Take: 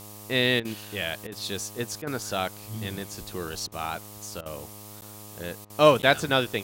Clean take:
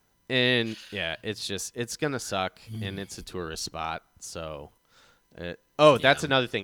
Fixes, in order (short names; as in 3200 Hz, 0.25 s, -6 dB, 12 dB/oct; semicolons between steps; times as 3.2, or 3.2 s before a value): de-hum 104.1 Hz, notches 12; interpolate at 5.01/6.02, 9.7 ms; interpolate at 0.6/1.27/2.02/3.67/4.41/5.65, 48 ms; noise print and reduce 23 dB